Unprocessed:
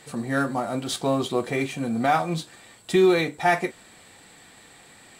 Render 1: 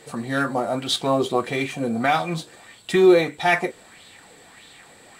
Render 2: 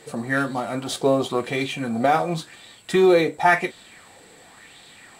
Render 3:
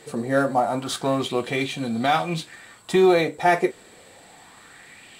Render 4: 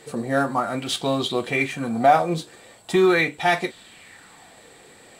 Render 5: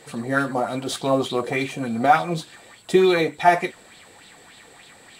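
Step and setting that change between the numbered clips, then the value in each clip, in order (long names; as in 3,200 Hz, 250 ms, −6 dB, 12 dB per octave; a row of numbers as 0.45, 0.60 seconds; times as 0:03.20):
auto-filter bell, speed: 1.6, 0.93, 0.27, 0.41, 3.4 Hertz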